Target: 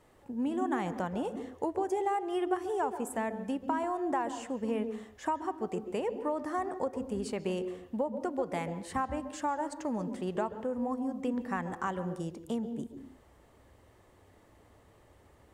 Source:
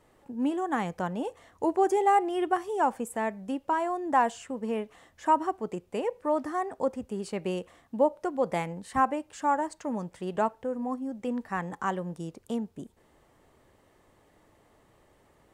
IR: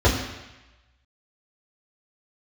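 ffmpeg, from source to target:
-filter_complex "[0:a]acompressor=threshold=-29dB:ratio=6,asplit=2[link_01][link_02];[1:a]atrim=start_sample=2205,afade=type=out:start_time=0.28:duration=0.01,atrim=end_sample=12789,adelay=129[link_03];[link_02][link_03]afir=irnorm=-1:irlink=0,volume=-31dB[link_04];[link_01][link_04]amix=inputs=2:normalize=0"

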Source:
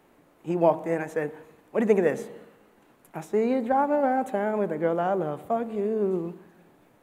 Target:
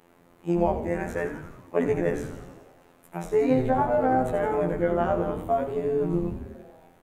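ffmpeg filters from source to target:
ffmpeg -i in.wav -filter_complex "[0:a]alimiter=limit=-14.5dB:level=0:latency=1:release=475,afftfilt=real='hypot(re,im)*cos(PI*b)':imag='0':win_size=2048:overlap=0.75,flanger=delay=9.2:depth=5:regen=82:speed=0.69:shape=triangular,asplit=9[link_01][link_02][link_03][link_04][link_05][link_06][link_07][link_08][link_09];[link_02]adelay=85,afreqshift=-140,volume=-9dB[link_10];[link_03]adelay=170,afreqshift=-280,volume=-12.9dB[link_11];[link_04]adelay=255,afreqshift=-420,volume=-16.8dB[link_12];[link_05]adelay=340,afreqshift=-560,volume=-20.6dB[link_13];[link_06]adelay=425,afreqshift=-700,volume=-24.5dB[link_14];[link_07]adelay=510,afreqshift=-840,volume=-28.4dB[link_15];[link_08]adelay=595,afreqshift=-980,volume=-32.3dB[link_16];[link_09]adelay=680,afreqshift=-1120,volume=-36.1dB[link_17];[link_01][link_10][link_11][link_12][link_13][link_14][link_15][link_16][link_17]amix=inputs=9:normalize=0,volume=9dB" out.wav

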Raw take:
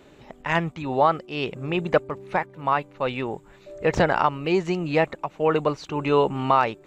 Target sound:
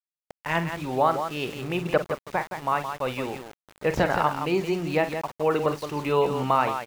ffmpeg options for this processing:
ffmpeg -i in.wav -af "aecho=1:1:46.65|169.1:0.282|0.398,aeval=exprs='val(0)*gte(abs(val(0)),0.0188)':channel_layout=same,volume=-3dB" out.wav

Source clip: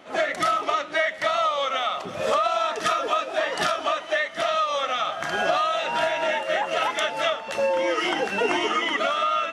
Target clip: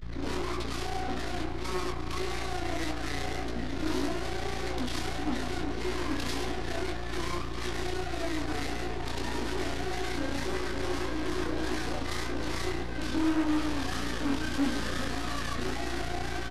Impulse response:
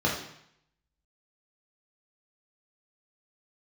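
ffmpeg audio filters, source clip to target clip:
-filter_complex "[0:a]tiltshelf=frequency=1500:gain=-6.5,aeval=exprs='max(val(0),0)':channel_layout=same,equalizer=frequency=7900:width=1.3:gain=5.5,asoftclip=type=tanh:threshold=-29.5dB,highpass=frequency=480:width_type=q:width=4,bandreject=frequency=680:width=12,asplit=2[link_01][link_02];[1:a]atrim=start_sample=2205,lowpass=2000[link_03];[link_02][link_03]afir=irnorm=-1:irlink=0,volume=-13.5dB[link_04];[link_01][link_04]amix=inputs=2:normalize=0,aeval=exprs='val(0)+0.0251*(sin(2*PI*50*n/s)+sin(2*PI*2*50*n/s)/2+sin(2*PI*3*50*n/s)/3+sin(2*PI*4*50*n/s)/4+sin(2*PI*5*50*n/s)/5)':channel_layout=same,aeval=exprs='0.0841*(cos(1*acos(clip(val(0)/0.0841,-1,1)))-cos(1*PI/2))+0.0237*(cos(4*acos(clip(val(0)/0.0841,-1,1)))-cos(4*PI/2))':channel_layout=same,aecho=1:1:607:0.188,asetrate=25442,aresample=44100,flanger=delay=16.5:depth=6.2:speed=1.7"

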